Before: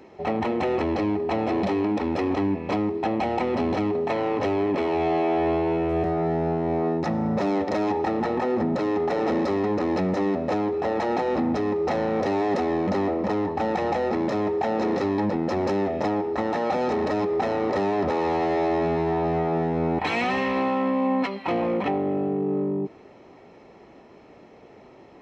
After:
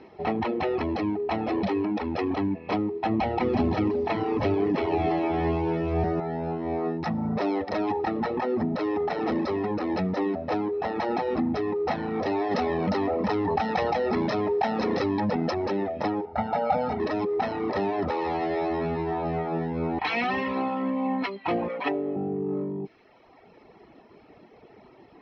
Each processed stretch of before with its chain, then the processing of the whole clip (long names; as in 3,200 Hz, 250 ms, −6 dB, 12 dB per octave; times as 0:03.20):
0:03.09–0:06.20: low-shelf EQ 190 Hz +8.5 dB + feedback echo at a low word length 333 ms, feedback 35%, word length 7 bits, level −9 dB
0:12.51–0:15.51: high-shelf EQ 5,300 Hz +7.5 dB + notch filter 340 Hz, Q 8.2 + envelope flattener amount 100%
0:16.25–0:17.00: low-pass filter 1,800 Hz 6 dB per octave + comb filter 1.4 ms, depth 92%
0:21.68–0:22.16: high-pass filter 450 Hz 6 dB per octave + comb filter 7.1 ms, depth 92%
whole clip: Butterworth low-pass 5,600 Hz 72 dB per octave; notch filter 550 Hz, Q 12; reverb reduction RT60 1.2 s